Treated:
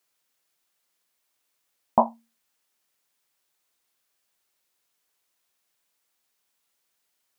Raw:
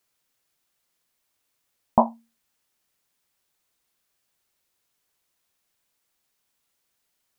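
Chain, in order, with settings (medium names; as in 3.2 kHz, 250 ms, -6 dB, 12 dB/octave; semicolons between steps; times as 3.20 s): bass shelf 190 Hz -10.5 dB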